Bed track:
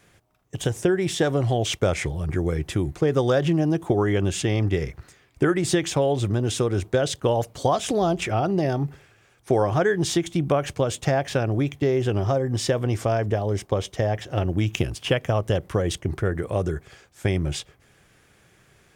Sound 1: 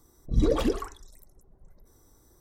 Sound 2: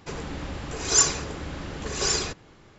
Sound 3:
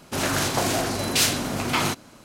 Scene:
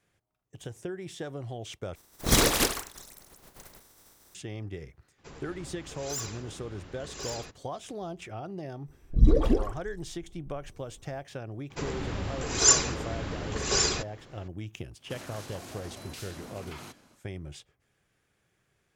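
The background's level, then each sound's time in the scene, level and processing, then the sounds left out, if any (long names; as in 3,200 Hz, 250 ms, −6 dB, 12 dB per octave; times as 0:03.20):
bed track −16 dB
0:01.95: overwrite with 1 + compressing power law on the bin magnitudes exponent 0.33
0:05.18: mix in 2 −13 dB + gain into a clipping stage and back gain 19 dB
0:08.85: mix in 1 −3.5 dB, fades 0.05 s + spectral tilt −2 dB per octave
0:11.70: mix in 2 −0.5 dB
0:14.98: mix in 3 −12 dB, fades 0.10 s + downward compressor, threshold −29 dBFS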